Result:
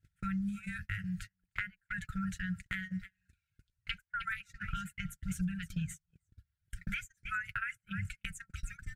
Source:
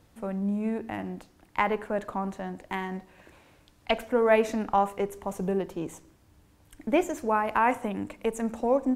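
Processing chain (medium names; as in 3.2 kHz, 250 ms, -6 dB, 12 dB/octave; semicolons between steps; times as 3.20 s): peaking EQ 7.9 kHz +4 dB 0.85 oct; delay 307 ms -13.5 dB; reverb removal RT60 1.2 s; brick-wall FIR band-stop 180–1300 Hz; comb of notches 220 Hz; compression 5:1, threshold -50 dBFS, peak gain reduction 20.5 dB; treble shelf 2.2 kHz -12 dB; de-hum 72.23 Hz, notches 10; gate -59 dBFS, range -33 dB; trim +18 dB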